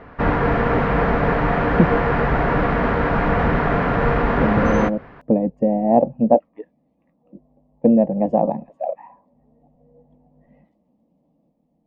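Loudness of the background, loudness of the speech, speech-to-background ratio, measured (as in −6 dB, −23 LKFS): −19.5 LKFS, −20.0 LKFS, −0.5 dB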